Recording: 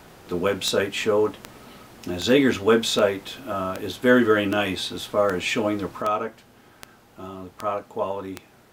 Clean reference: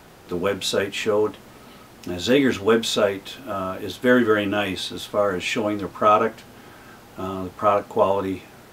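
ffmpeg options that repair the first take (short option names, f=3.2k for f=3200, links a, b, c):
-af "adeclick=t=4,asetnsamples=n=441:p=0,asendcmd='6.02 volume volume 8dB',volume=0dB"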